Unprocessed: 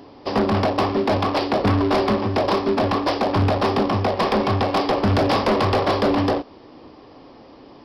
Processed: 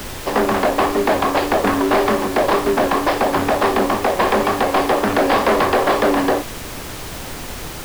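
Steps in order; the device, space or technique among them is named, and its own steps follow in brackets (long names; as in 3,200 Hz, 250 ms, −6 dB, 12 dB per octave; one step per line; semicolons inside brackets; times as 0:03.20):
horn gramophone (band-pass filter 270–3,300 Hz; parametric band 1,700 Hz +5 dB 0.52 octaves; tape wow and flutter; pink noise bed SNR 12 dB)
level +4 dB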